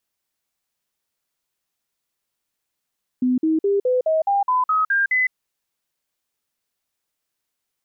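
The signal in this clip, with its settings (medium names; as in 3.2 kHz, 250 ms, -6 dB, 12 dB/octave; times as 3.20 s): stepped sine 252 Hz up, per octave 3, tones 10, 0.16 s, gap 0.05 s -15.5 dBFS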